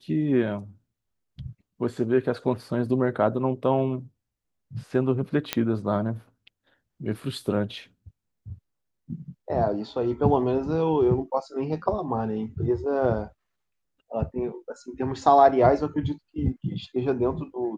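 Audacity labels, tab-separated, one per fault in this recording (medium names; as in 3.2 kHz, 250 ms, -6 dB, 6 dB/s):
5.530000	5.530000	pop -7 dBFS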